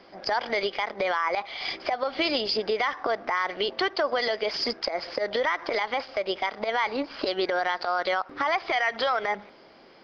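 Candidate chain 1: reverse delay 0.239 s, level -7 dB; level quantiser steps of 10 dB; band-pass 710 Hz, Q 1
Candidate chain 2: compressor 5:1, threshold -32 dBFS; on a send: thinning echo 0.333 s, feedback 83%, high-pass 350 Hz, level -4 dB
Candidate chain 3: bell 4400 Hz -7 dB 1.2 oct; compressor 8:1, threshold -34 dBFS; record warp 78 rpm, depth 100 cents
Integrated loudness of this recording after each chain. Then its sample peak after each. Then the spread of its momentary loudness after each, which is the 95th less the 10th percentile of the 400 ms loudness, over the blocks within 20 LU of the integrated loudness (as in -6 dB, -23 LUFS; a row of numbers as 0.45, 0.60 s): -35.0, -32.5, -38.0 LUFS; -19.0, -16.5, -20.5 dBFS; 4, 2, 3 LU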